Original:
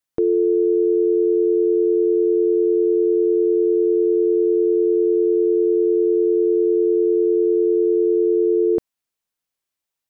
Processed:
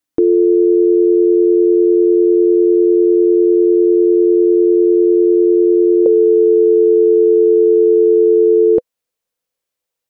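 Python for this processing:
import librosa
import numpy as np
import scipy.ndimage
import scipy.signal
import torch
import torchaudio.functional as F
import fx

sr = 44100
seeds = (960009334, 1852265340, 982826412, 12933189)

y = fx.peak_eq(x, sr, hz=fx.steps((0.0, 300.0), (6.06, 500.0)), db=12.5, octaves=0.37)
y = y * 10.0 ** (2.5 / 20.0)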